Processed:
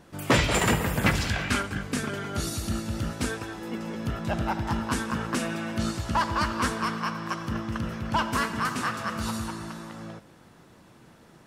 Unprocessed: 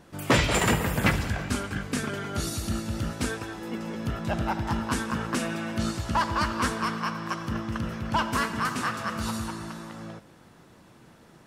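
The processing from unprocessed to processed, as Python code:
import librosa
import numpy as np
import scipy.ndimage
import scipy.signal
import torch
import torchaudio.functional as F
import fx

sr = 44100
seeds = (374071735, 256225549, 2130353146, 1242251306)

y = fx.peak_eq(x, sr, hz=fx.line((1.14, 6200.0), (1.61, 1700.0)), db=9.5, octaves=1.9, at=(1.14, 1.61), fade=0.02)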